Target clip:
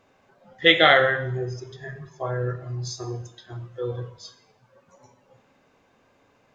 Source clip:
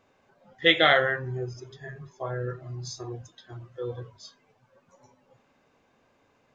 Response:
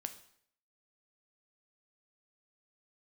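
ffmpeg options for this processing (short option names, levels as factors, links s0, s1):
-filter_complex "[0:a]asplit=2[s0][s1];[1:a]atrim=start_sample=2205,asetrate=37926,aresample=44100[s2];[s1][s2]afir=irnorm=-1:irlink=0,volume=2.82[s3];[s0][s3]amix=inputs=2:normalize=0,volume=0.473"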